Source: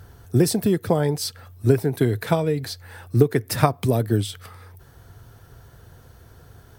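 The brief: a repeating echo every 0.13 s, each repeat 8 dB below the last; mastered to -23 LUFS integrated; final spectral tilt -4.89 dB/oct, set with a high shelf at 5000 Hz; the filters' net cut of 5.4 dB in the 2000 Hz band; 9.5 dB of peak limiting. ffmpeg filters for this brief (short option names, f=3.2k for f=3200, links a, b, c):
-af "equalizer=f=2k:t=o:g=-8.5,highshelf=f=5k:g=8.5,alimiter=limit=-12dB:level=0:latency=1,aecho=1:1:130|260|390|520|650:0.398|0.159|0.0637|0.0255|0.0102,volume=0.5dB"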